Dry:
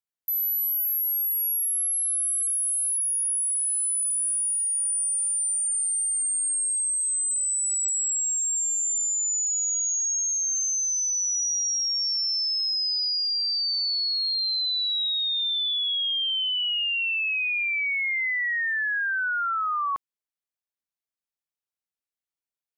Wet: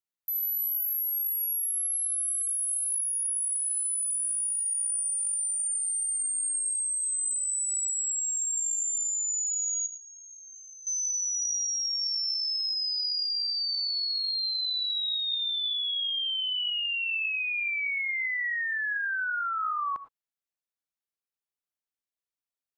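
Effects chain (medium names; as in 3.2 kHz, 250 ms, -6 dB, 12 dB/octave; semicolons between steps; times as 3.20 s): 9.86–10.87 s: low-pass 2.4 kHz 12 dB/octave; reverberation, pre-delay 3 ms, DRR 12 dB; trim -4 dB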